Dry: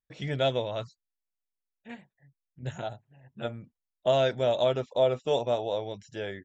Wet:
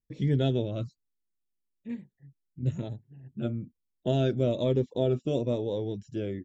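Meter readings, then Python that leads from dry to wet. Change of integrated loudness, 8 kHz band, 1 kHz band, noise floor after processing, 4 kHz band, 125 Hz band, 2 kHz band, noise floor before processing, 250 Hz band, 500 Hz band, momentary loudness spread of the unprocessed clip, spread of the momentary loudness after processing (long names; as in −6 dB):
−1.0 dB, can't be measured, −10.0 dB, −81 dBFS, −6.5 dB, +7.5 dB, −8.5 dB, below −85 dBFS, +8.5 dB, −3.0 dB, 21 LU, 15 LU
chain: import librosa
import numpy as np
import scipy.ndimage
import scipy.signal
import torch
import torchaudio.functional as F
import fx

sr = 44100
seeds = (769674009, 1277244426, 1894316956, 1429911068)

y = fx.low_shelf_res(x, sr, hz=500.0, db=12.5, q=1.5)
y = fx.notch_cascade(y, sr, direction='falling', hz=1.1)
y = y * 10.0 ** (-5.5 / 20.0)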